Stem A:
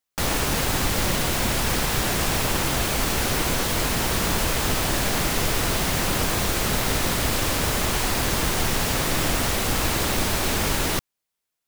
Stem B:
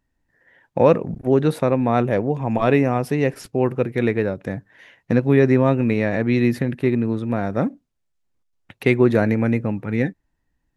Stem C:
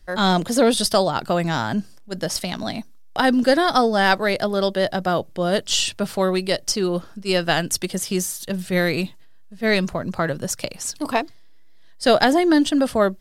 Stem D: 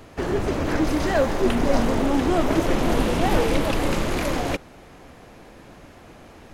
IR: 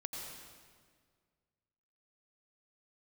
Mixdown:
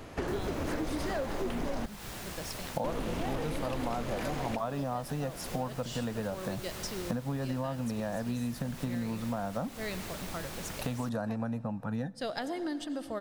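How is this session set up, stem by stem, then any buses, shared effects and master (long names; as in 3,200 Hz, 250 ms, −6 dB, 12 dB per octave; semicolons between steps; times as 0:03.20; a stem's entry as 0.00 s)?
−18.5 dB, 0.10 s, no send, no processing
+2.0 dB, 2.00 s, send −23 dB, high-pass filter 150 Hz 12 dB per octave; brickwall limiter −9 dBFS, peak gain reduction 6.5 dB; phaser with its sweep stopped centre 900 Hz, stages 4
−19.5 dB, 0.15 s, send −7 dB, no processing
−1.0 dB, 0.00 s, muted 0:01.86–0:02.84, no send, soft clipping −10.5 dBFS, distortion −22 dB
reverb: on, RT60 1.8 s, pre-delay 81 ms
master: downward compressor 6 to 1, threshold −31 dBFS, peak gain reduction 15.5 dB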